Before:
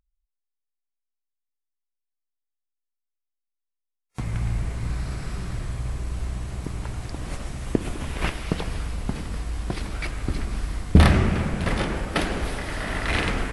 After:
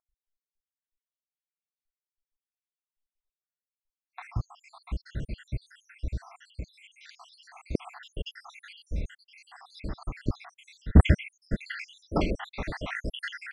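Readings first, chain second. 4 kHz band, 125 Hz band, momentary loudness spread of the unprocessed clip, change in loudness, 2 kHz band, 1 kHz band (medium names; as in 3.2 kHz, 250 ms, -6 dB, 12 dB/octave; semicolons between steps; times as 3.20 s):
-8.5 dB, -5.5 dB, 12 LU, -4.5 dB, -8.0 dB, -9.5 dB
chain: random holes in the spectrogram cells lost 81%; low-pass 4.8 kHz 12 dB/octave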